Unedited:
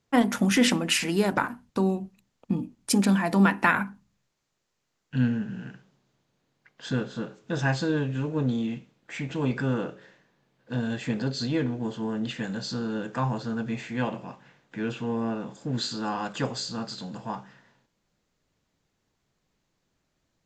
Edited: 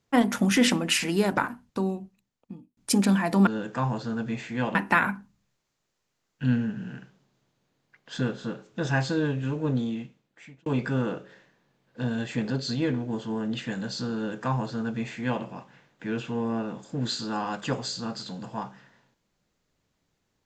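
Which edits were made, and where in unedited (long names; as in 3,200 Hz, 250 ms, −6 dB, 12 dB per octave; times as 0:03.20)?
0:01.43–0:02.77: fade out
0:08.43–0:09.38: fade out
0:12.87–0:14.15: duplicate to 0:03.47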